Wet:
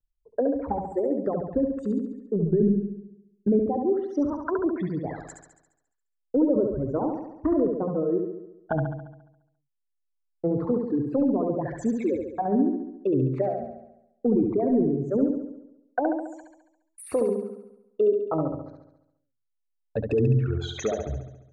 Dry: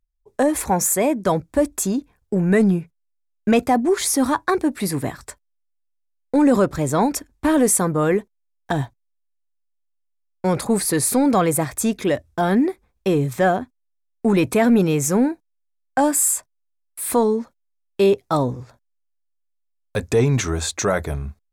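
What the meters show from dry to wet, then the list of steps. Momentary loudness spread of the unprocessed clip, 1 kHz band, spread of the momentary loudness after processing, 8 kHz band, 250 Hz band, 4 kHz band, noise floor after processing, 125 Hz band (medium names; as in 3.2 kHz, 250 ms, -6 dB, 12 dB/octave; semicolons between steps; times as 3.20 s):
10 LU, -10.5 dB, 12 LU, under -25 dB, -5.5 dB, under -10 dB, -78 dBFS, -5.0 dB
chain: resonances exaggerated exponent 2; hum notches 60/120/180/240 Hz; reverb removal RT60 1.8 s; low-pass that closes with the level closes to 2.9 kHz, closed at -19 dBFS; peaking EQ 12 kHz -8 dB 0.95 oct; low-pass that closes with the level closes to 450 Hz, closed at -17 dBFS; wow and flutter 150 cents; flutter echo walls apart 11.9 m, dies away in 0.87 s; trim -4 dB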